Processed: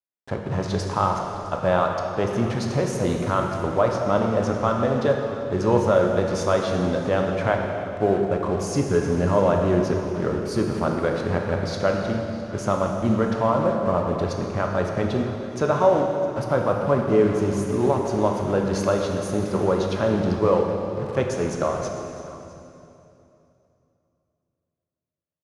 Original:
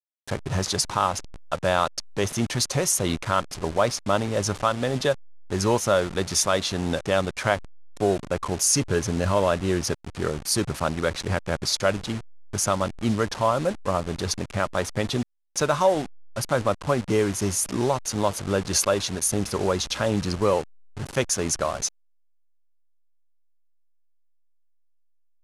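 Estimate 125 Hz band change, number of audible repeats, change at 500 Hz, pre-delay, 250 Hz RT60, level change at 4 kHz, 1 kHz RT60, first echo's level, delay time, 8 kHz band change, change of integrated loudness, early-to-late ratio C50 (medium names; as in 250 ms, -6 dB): +3.0 dB, 1, +4.0 dB, 14 ms, 3.2 s, -9.0 dB, 2.7 s, -18.5 dB, 658 ms, -13.5 dB, +2.0 dB, 2.5 dB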